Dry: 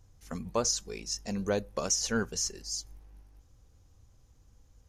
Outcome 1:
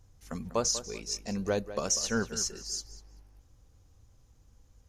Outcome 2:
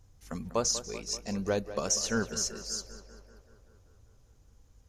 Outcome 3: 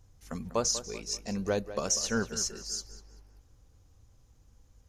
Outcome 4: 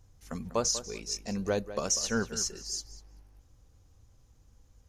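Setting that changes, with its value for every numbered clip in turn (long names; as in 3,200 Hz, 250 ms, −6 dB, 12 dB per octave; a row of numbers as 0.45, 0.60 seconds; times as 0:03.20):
tape delay, feedback: 30, 72, 48, 20%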